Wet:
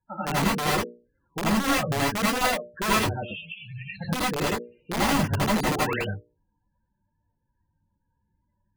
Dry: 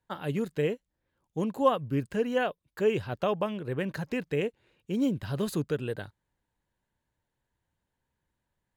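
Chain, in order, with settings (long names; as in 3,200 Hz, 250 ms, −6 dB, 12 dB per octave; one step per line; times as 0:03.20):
0:03.23–0:04.01: elliptic band-stop filter 110–2,300 Hz, stop band 40 dB
mains-hum notches 60/120/180/240/300/360/420/480/540/600 Hz
brickwall limiter −23.5 dBFS, peak gain reduction 11 dB
spectral peaks only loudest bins 16
wrap-around overflow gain 26 dB
0:05.63–0:05.96: sound drawn into the spectrogram rise 260–3,200 Hz −41 dBFS
convolution reverb, pre-delay 73 ms, DRR −5.5 dB
level +2.5 dB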